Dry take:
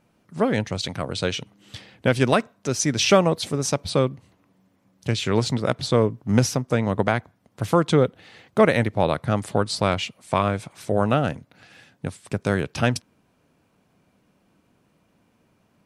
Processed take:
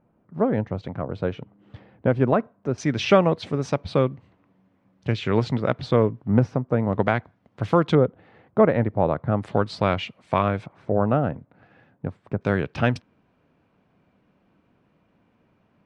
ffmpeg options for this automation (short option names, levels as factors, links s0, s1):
-af "asetnsamples=n=441:p=0,asendcmd='2.78 lowpass f 2600;6.28 lowpass f 1200;6.93 lowpass f 3100;7.95 lowpass f 1200;9.43 lowpass f 2800;10.66 lowpass f 1200;12.41 lowpass f 2800',lowpass=1100"